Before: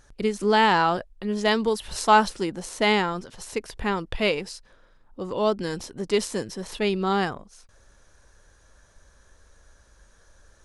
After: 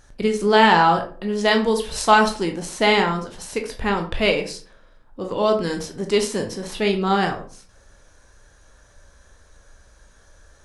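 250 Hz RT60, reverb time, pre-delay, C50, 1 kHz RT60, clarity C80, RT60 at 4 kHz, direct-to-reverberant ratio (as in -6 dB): 0.50 s, 0.45 s, 16 ms, 10.0 dB, 0.40 s, 15.0 dB, 0.25 s, 3.5 dB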